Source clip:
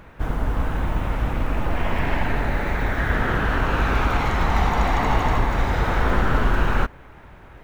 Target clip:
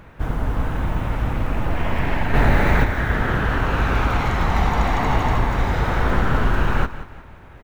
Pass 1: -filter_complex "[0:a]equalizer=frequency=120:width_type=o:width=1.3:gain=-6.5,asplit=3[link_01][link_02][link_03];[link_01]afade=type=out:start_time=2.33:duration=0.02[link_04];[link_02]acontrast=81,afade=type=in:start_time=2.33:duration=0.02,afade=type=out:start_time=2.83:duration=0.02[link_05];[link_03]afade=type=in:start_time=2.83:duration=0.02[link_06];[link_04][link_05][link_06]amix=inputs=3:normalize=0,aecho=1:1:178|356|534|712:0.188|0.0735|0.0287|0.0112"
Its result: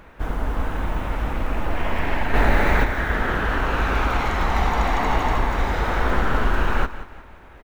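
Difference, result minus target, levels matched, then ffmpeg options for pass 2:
125 Hz band −3.5 dB
-filter_complex "[0:a]equalizer=frequency=120:width_type=o:width=1.3:gain=3.5,asplit=3[link_01][link_02][link_03];[link_01]afade=type=out:start_time=2.33:duration=0.02[link_04];[link_02]acontrast=81,afade=type=in:start_time=2.33:duration=0.02,afade=type=out:start_time=2.83:duration=0.02[link_05];[link_03]afade=type=in:start_time=2.83:duration=0.02[link_06];[link_04][link_05][link_06]amix=inputs=3:normalize=0,aecho=1:1:178|356|534|712:0.188|0.0735|0.0287|0.0112"

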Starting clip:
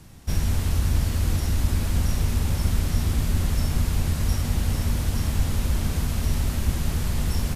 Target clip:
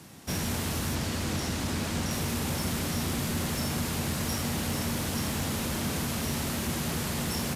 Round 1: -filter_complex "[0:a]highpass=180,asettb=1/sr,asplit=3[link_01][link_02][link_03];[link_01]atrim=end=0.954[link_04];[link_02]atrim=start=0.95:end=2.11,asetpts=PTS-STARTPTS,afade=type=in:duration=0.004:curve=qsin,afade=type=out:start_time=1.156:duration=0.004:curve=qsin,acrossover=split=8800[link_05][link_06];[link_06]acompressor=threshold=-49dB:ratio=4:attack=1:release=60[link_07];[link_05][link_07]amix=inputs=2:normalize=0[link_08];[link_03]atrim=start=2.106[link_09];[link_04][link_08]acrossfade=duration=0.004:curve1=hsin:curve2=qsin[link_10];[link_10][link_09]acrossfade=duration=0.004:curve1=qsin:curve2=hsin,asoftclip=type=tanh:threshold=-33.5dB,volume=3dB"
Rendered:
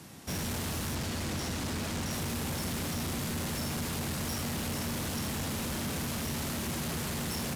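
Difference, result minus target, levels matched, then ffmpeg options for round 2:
soft clipping: distortion +11 dB
-filter_complex "[0:a]highpass=180,asettb=1/sr,asplit=3[link_01][link_02][link_03];[link_01]atrim=end=0.954[link_04];[link_02]atrim=start=0.95:end=2.11,asetpts=PTS-STARTPTS,afade=type=in:duration=0.004:curve=qsin,afade=type=out:start_time=1.156:duration=0.004:curve=qsin,acrossover=split=8800[link_05][link_06];[link_06]acompressor=threshold=-49dB:ratio=4:attack=1:release=60[link_07];[link_05][link_07]amix=inputs=2:normalize=0[link_08];[link_03]atrim=start=2.106[link_09];[link_04][link_08]acrossfade=duration=0.004:curve1=hsin:curve2=qsin[link_10];[link_10][link_09]acrossfade=duration=0.004:curve1=qsin:curve2=hsin,asoftclip=type=tanh:threshold=-24dB,volume=3dB"

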